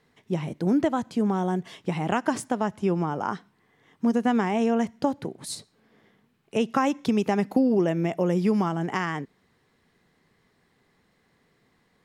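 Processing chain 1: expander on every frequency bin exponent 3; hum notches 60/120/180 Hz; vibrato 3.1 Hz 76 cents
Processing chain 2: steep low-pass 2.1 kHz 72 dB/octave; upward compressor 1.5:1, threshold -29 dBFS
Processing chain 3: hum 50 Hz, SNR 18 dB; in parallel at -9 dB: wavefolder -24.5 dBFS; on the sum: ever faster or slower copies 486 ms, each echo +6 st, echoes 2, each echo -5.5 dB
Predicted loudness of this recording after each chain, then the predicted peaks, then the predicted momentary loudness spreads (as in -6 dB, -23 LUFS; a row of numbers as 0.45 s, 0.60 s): -33.0 LUFS, -26.0 LUFS, -24.5 LUFS; -15.0 dBFS, -9.0 dBFS, -8.0 dBFS; 13 LU, 9 LU, 6 LU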